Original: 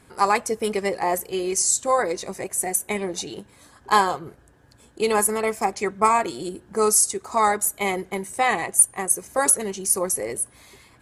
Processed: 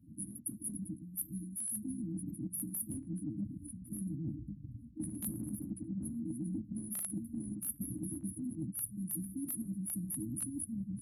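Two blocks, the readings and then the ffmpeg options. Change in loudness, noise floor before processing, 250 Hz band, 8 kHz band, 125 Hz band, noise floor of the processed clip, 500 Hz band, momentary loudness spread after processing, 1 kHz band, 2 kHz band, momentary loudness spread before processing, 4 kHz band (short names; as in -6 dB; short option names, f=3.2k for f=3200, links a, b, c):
-18.0 dB, -55 dBFS, -6.0 dB, -19.0 dB, -1.0 dB, -54 dBFS, -33.0 dB, 5 LU, under -40 dB, under -40 dB, 12 LU, under -35 dB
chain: -filter_complex "[0:a]afftfilt=real='re*(1-between(b*sr/4096,330,9700))':imag='im*(1-between(b*sr/4096,330,9700))':win_size=4096:overlap=0.75,asplit=2[a][b];[b]adelay=1105,lowpass=f=3.7k:p=1,volume=-16dB,asplit=2[c][d];[d]adelay=1105,lowpass=f=3.7k:p=1,volume=0.23[e];[a][c][e]amix=inputs=3:normalize=0,afftdn=nr=23:nf=-44,aphaser=in_gain=1:out_gain=1:delay=1.7:decay=0.42:speed=0.36:type=triangular,aeval=exprs='val(0)+0.000708*(sin(2*PI*50*n/s)+sin(2*PI*2*50*n/s)/2+sin(2*PI*3*50*n/s)/3+sin(2*PI*4*50*n/s)/4+sin(2*PI*5*50*n/s)/5)':c=same,afftfilt=real='re*lt(hypot(re,im),0.2)':imag='im*lt(hypot(re,im),0.2)':win_size=1024:overlap=0.75,lowshelf=f=310:g=-6,acrossover=split=2300[f][g];[f]dynaudnorm=f=340:g=13:m=12.5dB[h];[h][g]amix=inputs=2:normalize=0,highpass=100,areverse,acompressor=threshold=-41dB:ratio=12,areverse,volume=5dB"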